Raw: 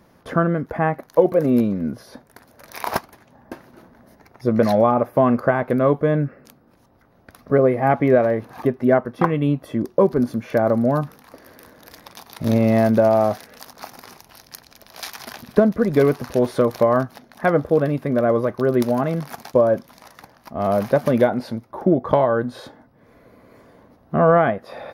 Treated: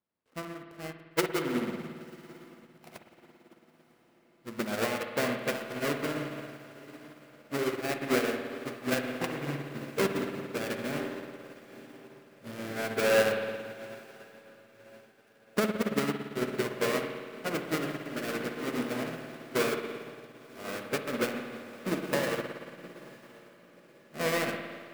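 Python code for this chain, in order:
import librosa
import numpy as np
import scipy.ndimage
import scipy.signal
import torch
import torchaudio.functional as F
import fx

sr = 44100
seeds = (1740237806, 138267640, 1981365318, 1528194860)

p1 = fx.dead_time(x, sr, dead_ms=0.29)
p2 = fx.tilt_eq(p1, sr, slope=2.5)
p3 = fx.formant_shift(p2, sr, semitones=-3)
p4 = fx.high_shelf(p3, sr, hz=4000.0, db=-8.0)
p5 = p4 + fx.echo_diffused(p4, sr, ms=1009, feedback_pct=71, wet_db=-9.0, dry=0)
p6 = fx.rev_spring(p5, sr, rt60_s=3.7, pass_ms=(56,), chirp_ms=20, drr_db=-1.0)
p7 = fx.upward_expand(p6, sr, threshold_db=-30.0, expansion=2.5)
y = F.gain(torch.from_numpy(p7), -7.0).numpy()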